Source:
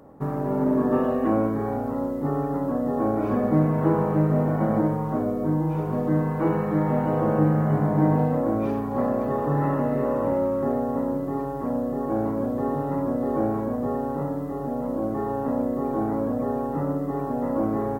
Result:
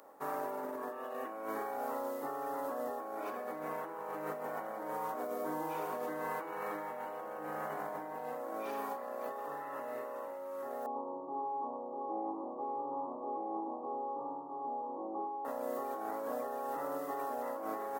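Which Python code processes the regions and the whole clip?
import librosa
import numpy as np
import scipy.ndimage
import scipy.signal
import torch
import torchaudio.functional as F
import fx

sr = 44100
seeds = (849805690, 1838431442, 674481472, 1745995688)

y = fx.chain(x, sr, fx.cheby_ripple(hz=1200.0, ripple_db=9),
    fx.echo_feedback(ms=104, feedback_pct=47, wet_db=-7.0), at=(10.86, 15.45))
y = scipy.signal.sosfilt(scipy.signal.butter(2, 530.0, 'highpass', fs=sr, output='sos'), y)
y = fx.tilt_eq(y, sr, slope=2.5)
y = fx.over_compress(y, sr, threshold_db=-35.0, ratio=-1.0)
y = y * 10.0 ** (-4.5 / 20.0)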